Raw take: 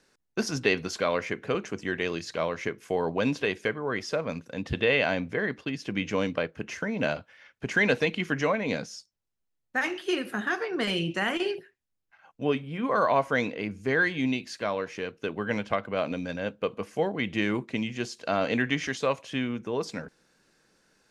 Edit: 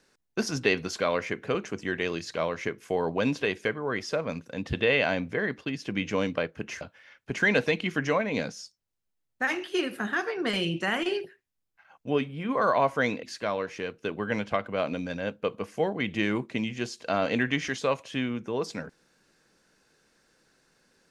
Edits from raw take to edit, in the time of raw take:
6.81–7.15 cut
13.57–14.42 cut

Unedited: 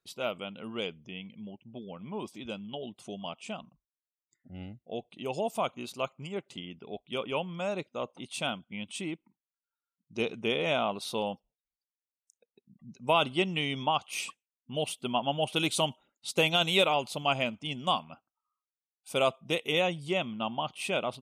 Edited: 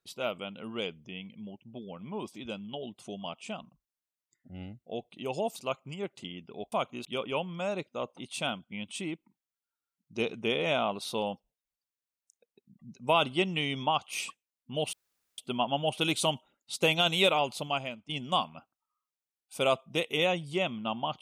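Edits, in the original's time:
5.56–5.89 move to 7.05
14.93 insert room tone 0.45 s
17.16–17.64 fade out quadratic, to -11 dB

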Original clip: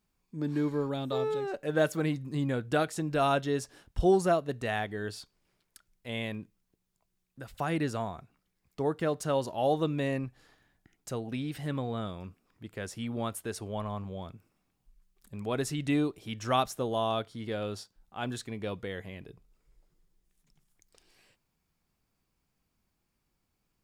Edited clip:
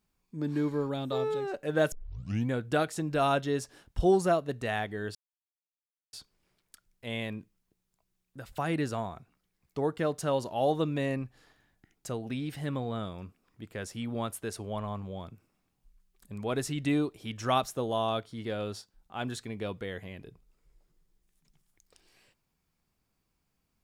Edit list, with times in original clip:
1.92 tape start 0.59 s
5.15 insert silence 0.98 s

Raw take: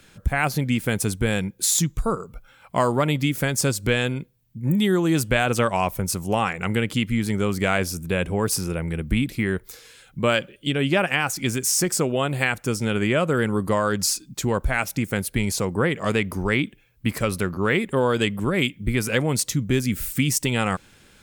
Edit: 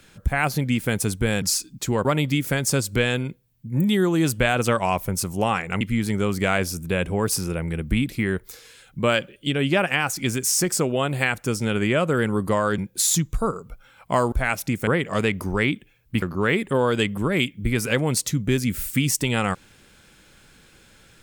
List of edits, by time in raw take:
1.42–2.96 swap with 13.98–14.61
6.72–7.01 cut
15.16–15.78 cut
17.13–17.44 cut

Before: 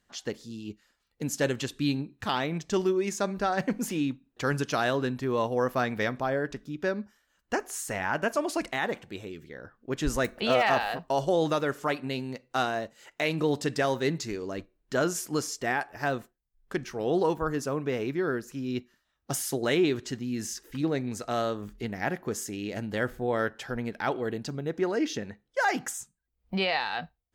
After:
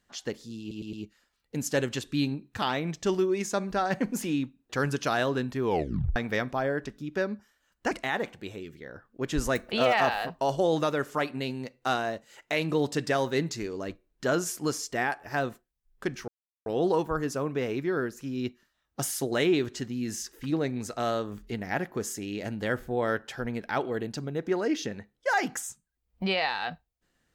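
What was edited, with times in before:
0.6 stutter 0.11 s, 4 plays
5.31 tape stop 0.52 s
7.58–8.6 cut
16.97 insert silence 0.38 s

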